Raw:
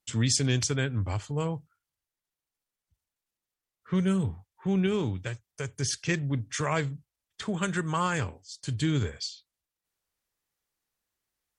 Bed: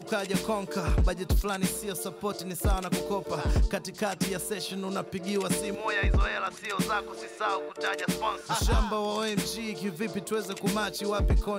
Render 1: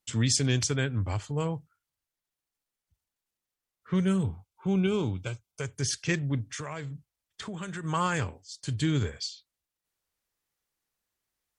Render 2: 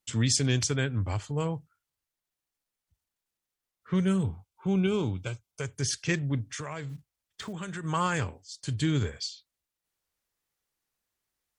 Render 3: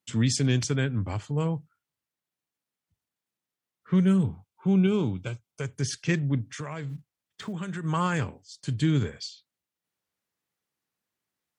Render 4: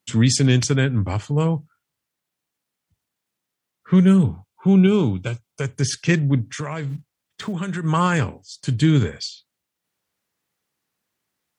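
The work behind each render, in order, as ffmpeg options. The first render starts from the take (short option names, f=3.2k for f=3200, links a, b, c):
-filter_complex "[0:a]asettb=1/sr,asplit=3[a][b][c];[a]atrim=end=4.234[d];[b]atrim=start=4.23:end=5.61,asetpts=PTS-STARTPTS,afade=t=in:d=0.004:c=qsin,afade=t=out:st=1.376:d=0.004:c=qsin,asuperstop=centerf=1800:order=8:qfactor=4[e];[c]atrim=start=5.606[f];[d][e]acrossfade=d=0.004:c1=hsin:c2=qsin[g];[g][f]acrossfade=d=0.004:c1=qsin:c2=hsin,asplit=3[h][i][j];[h]afade=t=out:st=6.44:d=0.02[k];[i]acompressor=threshold=-35dB:ratio=3:attack=3.2:release=140:knee=1:detection=peak,afade=t=in:st=6.44:d=0.02,afade=t=out:st=7.83:d=0.02[l];[j]afade=t=in:st=7.83:d=0.02[m];[k][l][m]amix=inputs=3:normalize=0"
-filter_complex "[0:a]asettb=1/sr,asplit=3[a][b][c];[a]atrim=end=6.894[d];[b]atrim=start=6.89:end=7.53,asetpts=PTS-STARTPTS,afade=t=in:d=0.004:c=qsin,afade=t=out:st=0.636:d=0.004:c=qsin,acrusher=bits=6:mode=log:mix=0:aa=0.000001[e];[c]atrim=start=7.526[f];[d][e]acrossfade=d=0.004:c1=hsin:c2=qsin[g];[g][f]acrossfade=d=0.004:c1=qsin:c2=hsin"
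-af "highpass=180,bass=f=250:g=10,treble=f=4k:g=-4"
-af "volume=7.5dB"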